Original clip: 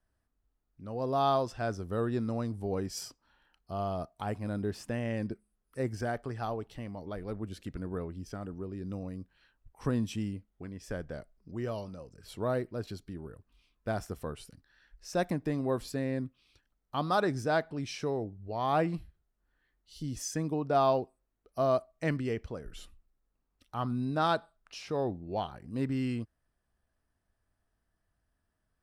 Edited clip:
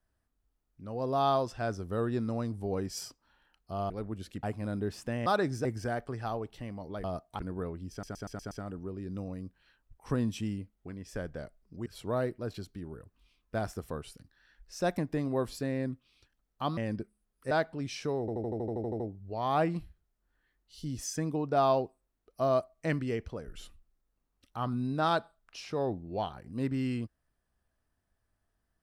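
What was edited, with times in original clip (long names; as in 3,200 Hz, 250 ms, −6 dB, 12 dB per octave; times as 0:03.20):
0:03.90–0:04.25: swap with 0:07.21–0:07.74
0:05.08–0:05.82: swap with 0:17.10–0:17.49
0:08.26: stutter 0.12 s, 6 plays
0:11.61–0:12.19: remove
0:18.18: stutter 0.08 s, 11 plays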